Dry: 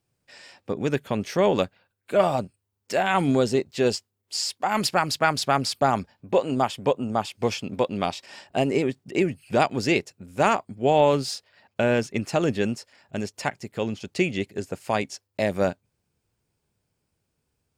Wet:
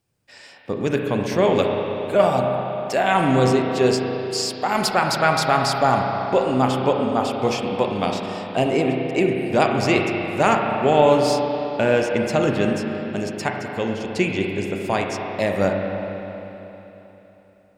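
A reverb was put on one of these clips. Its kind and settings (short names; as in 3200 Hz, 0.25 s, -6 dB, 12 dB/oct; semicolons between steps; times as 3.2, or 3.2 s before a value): spring tank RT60 3.5 s, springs 31/39 ms, chirp 35 ms, DRR 1 dB; gain +2 dB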